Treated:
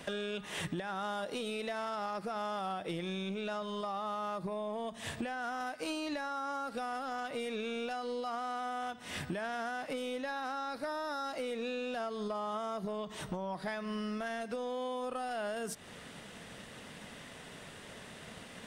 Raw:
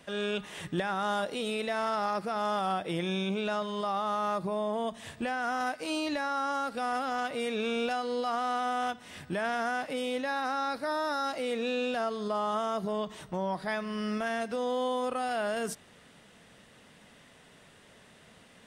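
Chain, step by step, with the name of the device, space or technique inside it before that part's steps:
drum-bus smash (transient designer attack +5 dB, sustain 0 dB; downward compressor 12 to 1, threshold −40 dBFS, peak gain reduction 17 dB; soft clipping −35 dBFS, distortion −21 dB)
level +7 dB

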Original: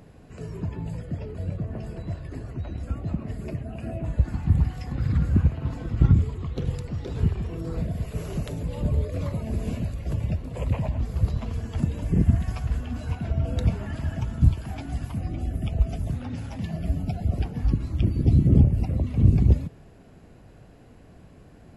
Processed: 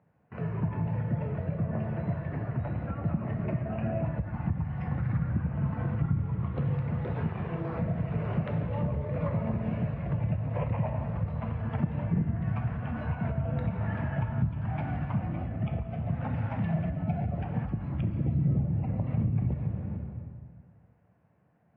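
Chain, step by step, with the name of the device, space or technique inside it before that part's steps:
noise gate with hold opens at −36 dBFS
0:07.14–0:07.79: bass and treble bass −7 dB, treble +5 dB
dense smooth reverb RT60 1.9 s, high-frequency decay 0.8×, DRR 4 dB
bass amplifier (downward compressor 4 to 1, threshold −28 dBFS, peak gain reduction 15.5 dB; loudspeaker in its box 88–2,200 Hz, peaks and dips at 90 Hz −6 dB, 270 Hz −8 dB, 390 Hz −9 dB, 890 Hz +3 dB)
level +5.5 dB

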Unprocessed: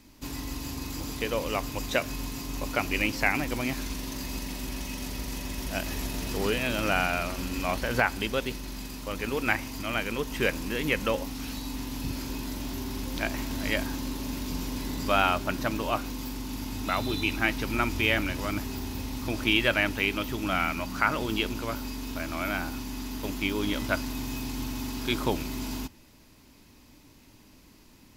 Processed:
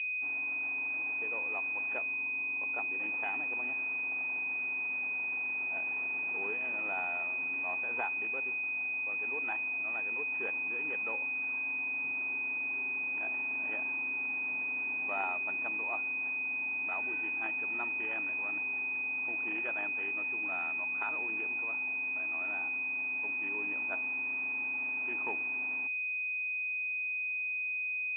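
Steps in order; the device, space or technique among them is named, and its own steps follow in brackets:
0:01.98–0:02.98: low-pass filter 2,900 Hz → 1,600 Hz 24 dB per octave
toy sound module (linearly interpolated sample-rate reduction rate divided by 8×; switching amplifier with a slow clock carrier 2,500 Hz; loudspeaker in its box 540–4,500 Hz, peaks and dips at 570 Hz −10 dB, 840 Hz +3 dB, 1,200 Hz −4 dB, 2,000 Hz +4 dB, 2,900 Hz +10 dB, 4,400 Hz −10 dB)
level −6.5 dB

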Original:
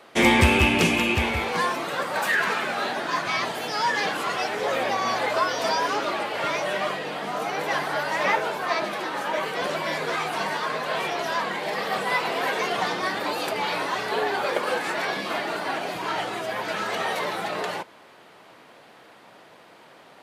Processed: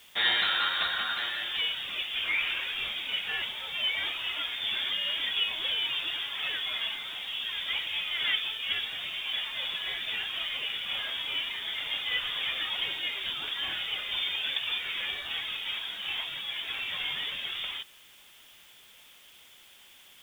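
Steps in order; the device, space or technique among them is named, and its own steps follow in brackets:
scrambled radio voice (band-pass filter 360–2,900 Hz; voice inversion scrambler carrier 4,000 Hz; white noise bed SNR 26 dB)
level −5.5 dB

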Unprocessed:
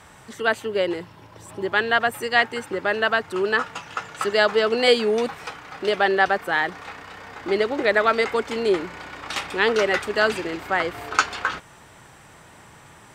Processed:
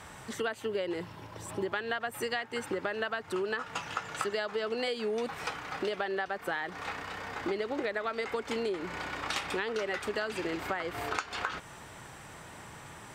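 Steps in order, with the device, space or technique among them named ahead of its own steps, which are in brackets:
serial compression, leveller first (downward compressor 2.5 to 1, threshold −23 dBFS, peak gain reduction 8 dB; downward compressor, threshold −30 dBFS, peak gain reduction 12 dB)

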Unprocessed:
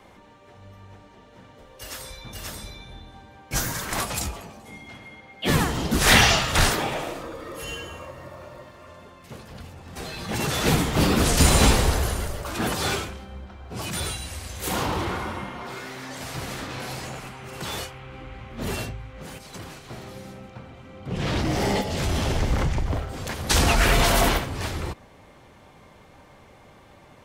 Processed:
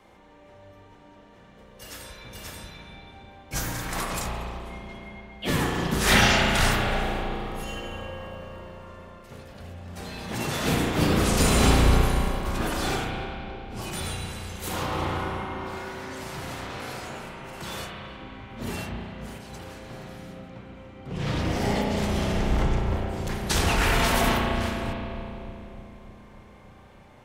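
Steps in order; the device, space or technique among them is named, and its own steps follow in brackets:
dub delay into a spring reverb (feedback echo with a low-pass in the loop 301 ms, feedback 69%, low-pass 830 Hz, level −8.5 dB; spring reverb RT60 2.5 s, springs 34 ms, chirp 65 ms, DRR −0.5 dB)
level −5 dB

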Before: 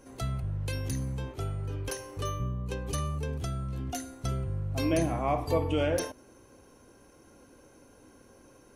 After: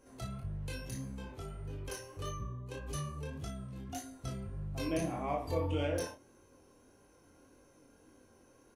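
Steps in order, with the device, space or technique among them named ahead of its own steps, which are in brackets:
double-tracked vocal (double-tracking delay 35 ms −6 dB; chorus effect 1.7 Hz, delay 19.5 ms, depth 5.7 ms)
level −4.5 dB

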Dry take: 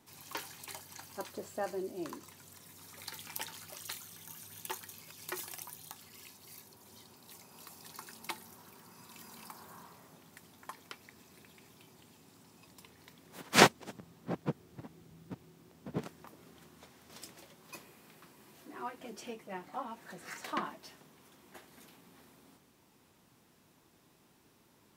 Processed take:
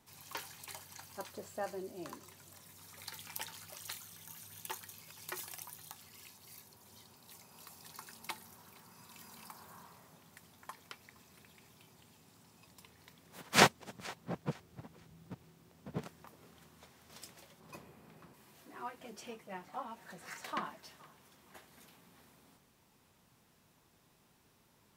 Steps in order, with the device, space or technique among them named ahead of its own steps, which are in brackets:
0:17.60–0:18.34: tilt shelving filter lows +6.5 dB, about 1,400 Hz
low shelf boost with a cut just above (low-shelf EQ 62 Hz +6.5 dB; parametric band 310 Hz −5.5 dB 0.77 octaves)
feedback echo with a high-pass in the loop 467 ms, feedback 29%, level −21 dB
level −2 dB

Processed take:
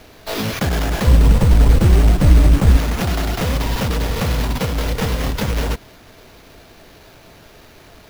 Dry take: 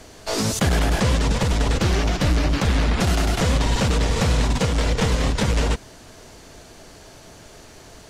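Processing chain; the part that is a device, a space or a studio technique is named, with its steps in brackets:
0:01.07–0:02.77: spectral tilt −2.5 dB per octave
early companding sampler (sample-rate reduction 8,400 Hz, jitter 0%; log-companded quantiser 6 bits)

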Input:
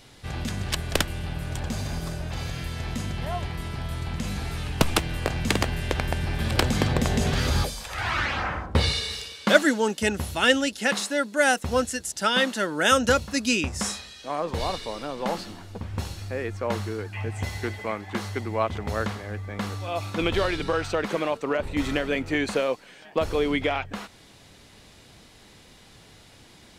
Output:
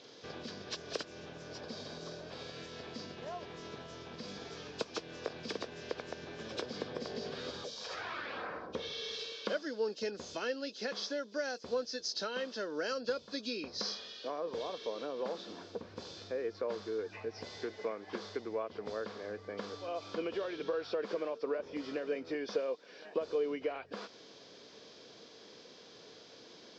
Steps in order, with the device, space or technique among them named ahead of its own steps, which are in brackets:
hearing aid with frequency lowering (hearing-aid frequency compression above 2,400 Hz 1.5 to 1; downward compressor 4 to 1, threshold −35 dBFS, peak gain reduction 20.5 dB; loudspeaker in its box 310–6,200 Hz, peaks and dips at 460 Hz +7 dB, 830 Hz −8 dB, 1,300 Hz −4 dB, 2,000 Hz −9 dB, 2,800 Hz −7 dB, 4,900 Hz +5 dB)

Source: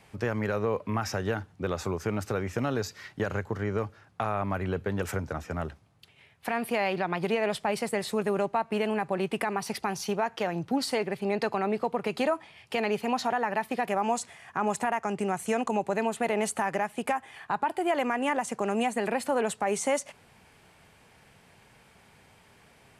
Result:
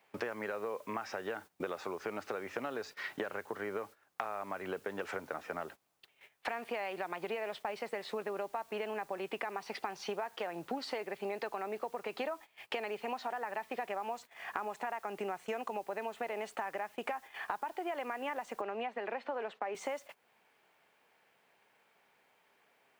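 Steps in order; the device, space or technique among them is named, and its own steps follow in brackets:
baby monitor (band-pass filter 390–3,500 Hz; downward compressor 10 to 1, threshold −42 dBFS, peak gain reduction 19 dB; white noise bed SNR 25 dB; noise gate −56 dBFS, range −17 dB)
0:18.61–0:19.75: three-way crossover with the lows and the highs turned down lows −16 dB, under 170 Hz, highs −21 dB, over 4,300 Hz
level +7 dB

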